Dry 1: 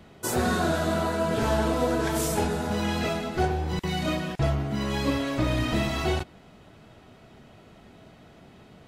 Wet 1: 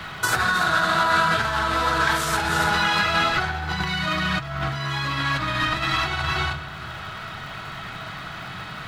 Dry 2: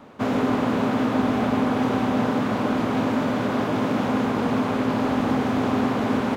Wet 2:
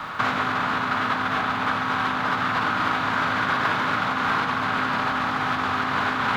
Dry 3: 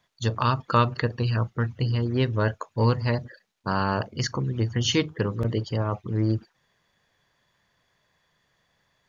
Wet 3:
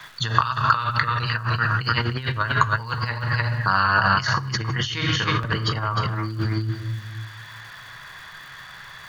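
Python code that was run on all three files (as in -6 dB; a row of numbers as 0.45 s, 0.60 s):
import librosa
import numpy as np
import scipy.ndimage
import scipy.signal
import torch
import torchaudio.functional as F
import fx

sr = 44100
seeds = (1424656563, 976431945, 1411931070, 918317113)

p1 = fx.graphic_eq(x, sr, hz=(125, 250, 500, 4000), db=(4, -8, -8, 8))
p2 = p1 + fx.echo_single(p1, sr, ms=304, db=-9.5, dry=0)
p3 = fx.room_shoebox(p2, sr, seeds[0], volume_m3=330.0, walls='mixed', distance_m=0.59)
p4 = fx.over_compress(p3, sr, threshold_db=-30.0, ratio=-1.0)
p5 = fx.peak_eq(p4, sr, hz=1400.0, db=15.0, octaves=1.5)
p6 = fx.dmg_crackle(p5, sr, seeds[1], per_s=440.0, level_db=-49.0)
p7 = fx.band_squash(p6, sr, depth_pct=40)
y = p7 * 10.0 ** (-24 / 20.0) / np.sqrt(np.mean(np.square(p7)))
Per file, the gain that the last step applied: +0.5 dB, -2.0 dB, +2.0 dB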